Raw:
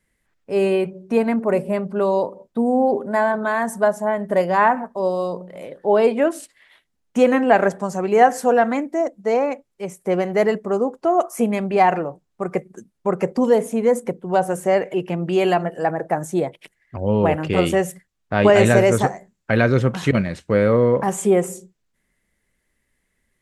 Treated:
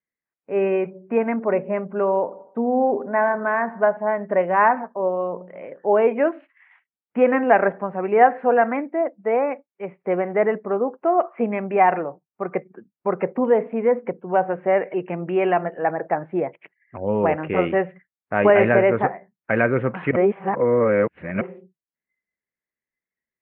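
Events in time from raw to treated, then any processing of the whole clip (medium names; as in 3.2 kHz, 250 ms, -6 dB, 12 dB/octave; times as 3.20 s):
1.85–3.97 s: bucket-brigade echo 79 ms, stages 1024, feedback 53%, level -19.5 dB
10.13–10.67 s: low-pass 2.6 kHz
20.16–21.41 s: reverse
whole clip: high-pass 300 Hz 6 dB/octave; spectral noise reduction 19 dB; steep low-pass 2.5 kHz 48 dB/octave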